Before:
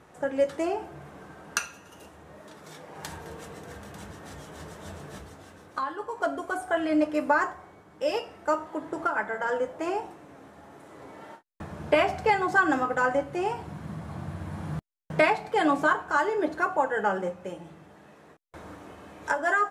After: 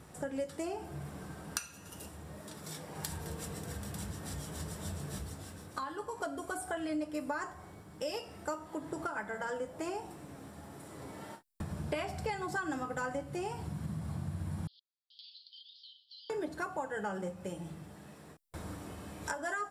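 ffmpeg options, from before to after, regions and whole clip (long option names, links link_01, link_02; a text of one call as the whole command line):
ffmpeg -i in.wav -filter_complex "[0:a]asettb=1/sr,asplit=3[link_01][link_02][link_03];[link_01]atrim=end=14.674[link_04];[link_02]atrim=start=14.67:end=16.3,asetpts=PTS-STARTPTS,afade=type=in:duration=0.004:curve=qsin,afade=type=out:start_time=1.626:duration=0.004:curve=qsin,asuperpass=centerf=3900:order=12:qfactor=2.1,acompressor=threshold=-51dB:ratio=12:attack=3.2:release=140:knee=1:detection=peak[link_05];[link_03]atrim=start=16.296[link_06];[link_04][link_05]acrossfade=duration=0.004:curve1=hsin:curve2=qsin[link_07];[link_07][link_06]acrossfade=duration=0.004:curve1=qsin:curve2=hsin,bass=frequency=250:gain=10,treble=frequency=4000:gain=13,bandreject=frequency=6400:width=7.1,acompressor=threshold=-33dB:ratio=3,volume=-3.5dB" out.wav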